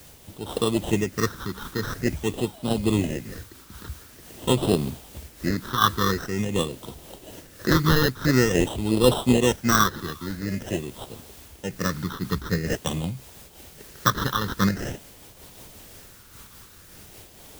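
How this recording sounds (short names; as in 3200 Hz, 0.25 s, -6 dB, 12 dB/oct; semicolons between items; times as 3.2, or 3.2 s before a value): aliases and images of a low sample rate 2300 Hz, jitter 0%; phasing stages 6, 0.47 Hz, lowest notch 650–1800 Hz; a quantiser's noise floor 8-bit, dither triangular; noise-modulated level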